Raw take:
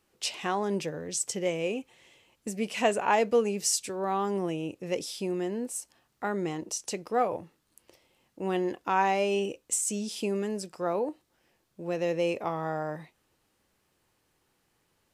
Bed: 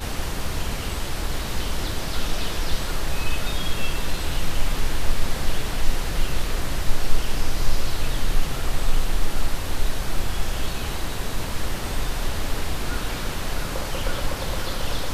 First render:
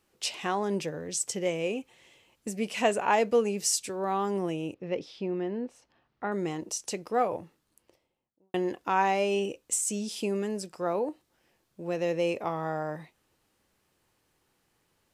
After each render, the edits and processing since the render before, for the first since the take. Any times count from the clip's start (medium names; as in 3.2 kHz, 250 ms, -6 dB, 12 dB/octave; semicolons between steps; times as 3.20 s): 4.74–6.32 s: distance through air 260 m; 7.41–8.54 s: studio fade out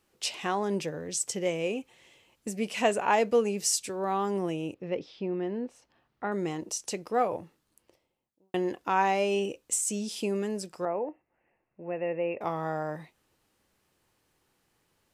4.90–5.43 s: distance through air 100 m; 10.85–12.41 s: rippled Chebyshev low-pass 2.8 kHz, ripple 6 dB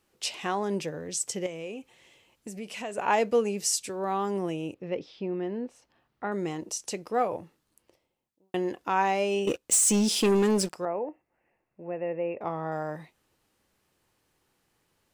1.46–2.98 s: compression 2.5:1, threshold -37 dBFS; 9.47–10.74 s: waveshaping leveller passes 3; 11.87–12.72 s: peaking EQ 9.5 kHz -13.5 dB 2.4 oct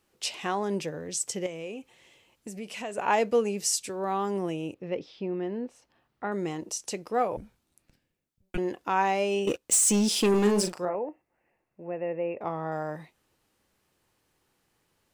7.37–8.58 s: frequency shift -380 Hz; 10.30–10.95 s: doubling 39 ms -6 dB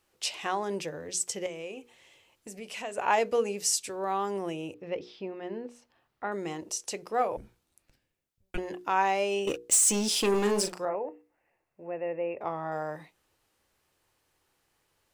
peaking EQ 200 Hz -6.5 dB 1.3 oct; hum notches 60/120/180/240/300/360/420/480 Hz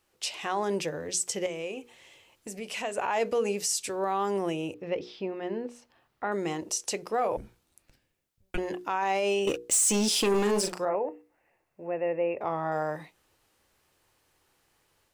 level rider gain up to 4 dB; peak limiter -18.5 dBFS, peak gain reduction 10.5 dB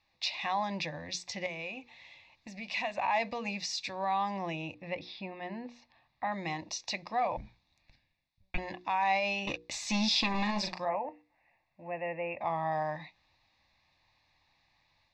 resonant low-pass 3.5 kHz, resonance Q 3.6; static phaser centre 2.1 kHz, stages 8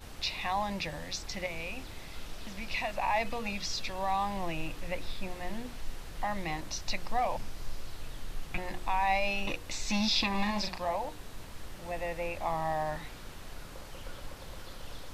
add bed -18 dB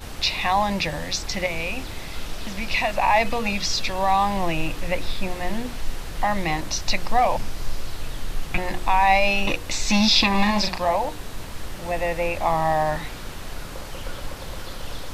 trim +11 dB